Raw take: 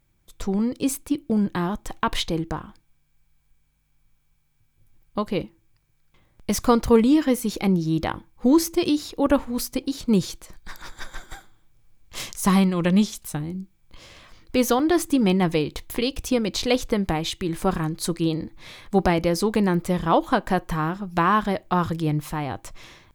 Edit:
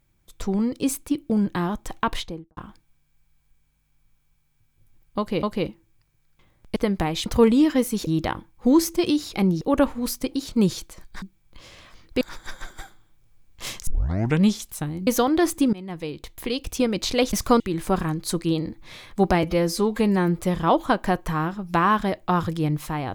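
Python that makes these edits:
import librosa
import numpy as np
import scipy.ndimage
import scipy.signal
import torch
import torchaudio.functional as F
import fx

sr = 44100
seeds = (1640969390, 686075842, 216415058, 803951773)

y = fx.studio_fade_out(x, sr, start_s=2.01, length_s=0.56)
y = fx.edit(y, sr, fx.repeat(start_s=5.18, length_s=0.25, count=2),
    fx.swap(start_s=6.51, length_s=0.27, other_s=16.85, other_length_s=0.5),
    fx.move(start_s=7.59, length_s=0.27, to_s=9.13),
    fx.tape_start(start_s=12.4, length_s=0.54),
    fx.move(start_s=13.6, length_s=0.99, to_s=10.74),
    fx.fade_in_from(start_s=15.25, length_s=1.1, floor_db=-22.5),
    fx.stretch_span(start_s=19.18, length_s=0.64, factor=1.5), tone=tone)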